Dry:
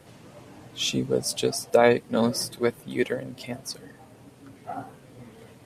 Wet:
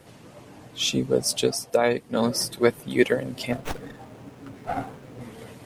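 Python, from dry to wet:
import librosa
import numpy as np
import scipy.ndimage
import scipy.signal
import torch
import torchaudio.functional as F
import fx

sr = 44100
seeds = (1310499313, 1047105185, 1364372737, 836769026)

y = fx.rider(x, sr, range_db=5, speed_s=0.5)
y = fx.hpss(y, sr, part='percussive', gain_db=3)
y = fx.running_max(y, sr, window=9, at=(3.52, 5.21))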